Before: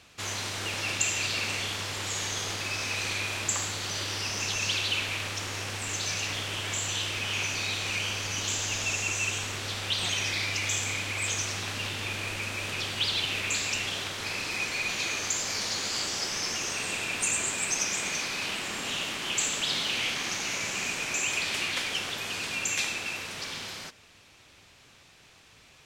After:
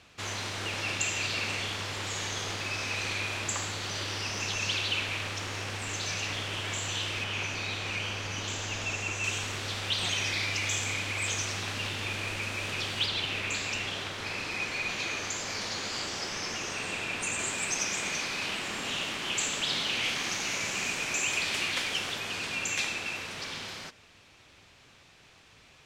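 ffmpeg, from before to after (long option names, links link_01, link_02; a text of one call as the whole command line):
ffmpeg -i in.wav -af "asetnsamples=nb_out_samples=441:pad=0,asendcmd='7.24 lowpass f 2600;9.24 lowpass f 7000;13.06 lowpass f 3300;17.39 lowpass f 6100;20.04 lowpass f 11000;22.18 lowpass f 5500',lowpass=frequency=4600:poles=1" out.wav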